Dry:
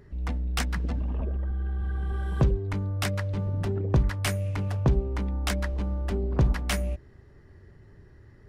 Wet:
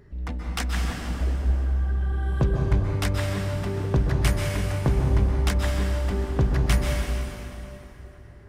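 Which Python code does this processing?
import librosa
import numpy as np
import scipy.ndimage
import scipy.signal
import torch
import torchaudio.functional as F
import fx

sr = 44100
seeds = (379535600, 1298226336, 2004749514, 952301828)

p1 = x + fx.echo_wet_bandpass(x, sr, ms=479, feedback_pct=55, hz=900.0, wet_db=-18.0, dry=0)
y = fx.rev_plate(p1, sr, seeds[0], rt60_s=3.1, hf_ratio=0.8, predelay_ms=115, drr_db=0.0)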